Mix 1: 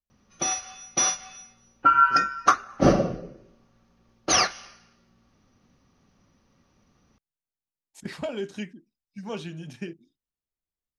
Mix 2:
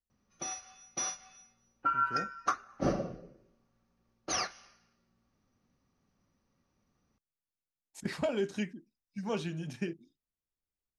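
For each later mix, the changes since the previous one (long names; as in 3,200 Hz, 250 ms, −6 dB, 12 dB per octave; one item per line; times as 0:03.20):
background −12.0 dB
master: add parametric band 3,200 Hz −3 dB 0.54 octaves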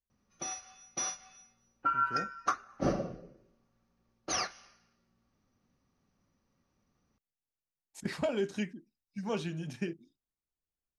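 nothing changed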